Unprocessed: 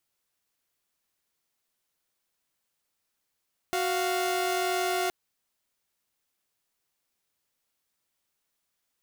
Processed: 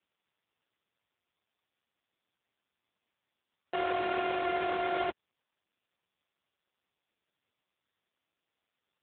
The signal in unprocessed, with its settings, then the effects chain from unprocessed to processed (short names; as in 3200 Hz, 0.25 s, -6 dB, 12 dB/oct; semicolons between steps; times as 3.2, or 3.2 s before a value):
chord F#4/F5 saw, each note -26 dBFS 1.37 s
AMR-NB 4.75 kbps 8000 Hz